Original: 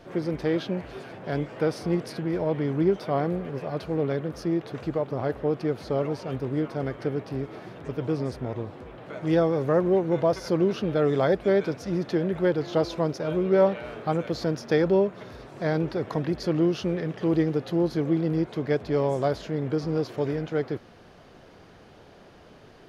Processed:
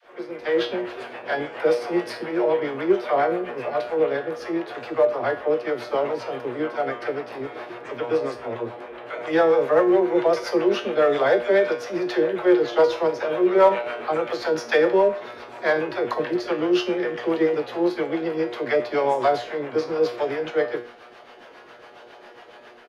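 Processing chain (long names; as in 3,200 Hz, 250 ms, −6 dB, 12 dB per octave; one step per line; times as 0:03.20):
high-shelf EQ 3,300 Hz +11.5 dB
two-band tremolo in antiphase 7.3 Hz, depth 70%, crossover 510 Hz
three-way crossover with the lows and the highs turned down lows −22 dB, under 340 Hz, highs −17 dB, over 3,000 Hz
tuned comb filter 120 Hz, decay 0.36 s, harmonics all, mix 80%
all-pass dispersion lows, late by 52 ms, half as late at 430 Hz
in parallel at −8 dB: hard clipping −33 dBFS, distortion −15 dB
on the sum: far-end echo of a speakerphone 100 ms, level −21 dB
automatic gain control gain up to 9.5 dB
level +7 dB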